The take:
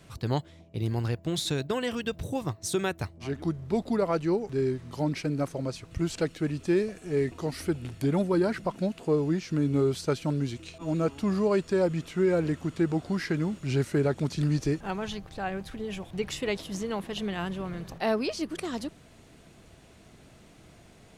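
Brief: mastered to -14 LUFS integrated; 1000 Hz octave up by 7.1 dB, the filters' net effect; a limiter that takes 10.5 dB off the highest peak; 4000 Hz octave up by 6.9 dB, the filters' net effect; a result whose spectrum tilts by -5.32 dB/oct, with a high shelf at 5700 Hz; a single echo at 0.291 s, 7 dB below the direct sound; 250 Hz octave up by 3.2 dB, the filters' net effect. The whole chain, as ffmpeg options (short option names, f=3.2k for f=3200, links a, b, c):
-af "equalizer=f=250:t=o:g=4,equalizer=f=1k:t=o:g=8.5,equalizer=f=4k:t=o:g=6,highshelf=f=5.7k:g=5,alimiter=limit=-20.5dB:level=0:latency=1,aecho=1:1:291:0.447,volume=15.5dB"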